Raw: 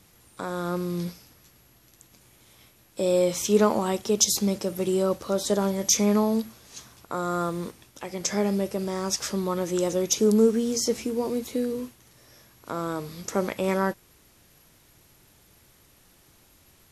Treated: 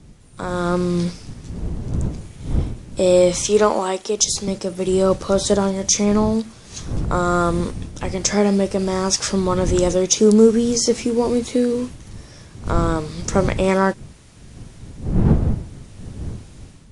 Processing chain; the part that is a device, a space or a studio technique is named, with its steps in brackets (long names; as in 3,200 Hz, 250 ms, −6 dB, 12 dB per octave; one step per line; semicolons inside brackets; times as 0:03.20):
0:03.43–0:04.48: high-pass filter 310 Hz 12 dB per octave
smartphone video outdoors (wind on the microphone 140 Hz −35 dBFS; automatic gain control gain up to 9.5 dB; AAC 96 kbit/s 22,050 Hz)